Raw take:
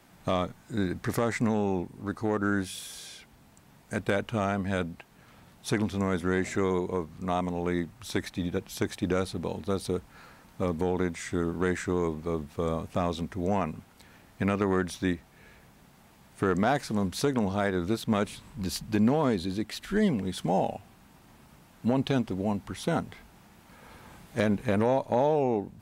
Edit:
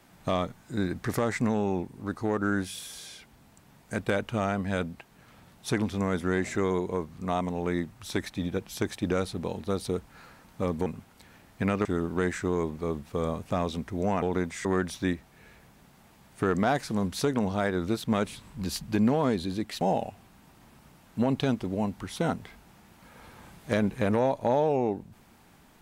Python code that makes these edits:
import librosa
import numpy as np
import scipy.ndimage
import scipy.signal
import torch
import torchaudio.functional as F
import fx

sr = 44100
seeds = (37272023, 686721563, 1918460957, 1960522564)

y = fx.edit(x, sr, fx.swap(start_s=10.86, length_s=0.43, other_s=13.66, other_length_s=0.99),
    fx.cut(start_s=19.81, length_s=0.67), tone=tone)